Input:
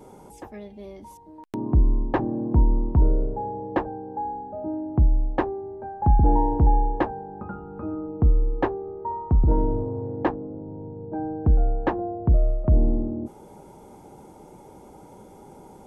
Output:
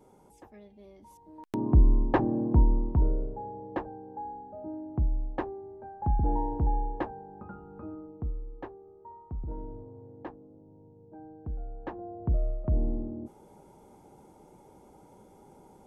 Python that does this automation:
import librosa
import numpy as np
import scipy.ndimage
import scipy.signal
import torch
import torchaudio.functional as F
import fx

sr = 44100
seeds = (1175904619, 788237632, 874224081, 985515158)

y = fx.gain(x, sr, db=fx.line((0.97, -12.0), (1.5, -1.0), (2.38, -1.0), (3.35, -9.0), (7.8, -9.0), (8.43, -18.0), (11.68, -18.0), (12.25, -8.5)))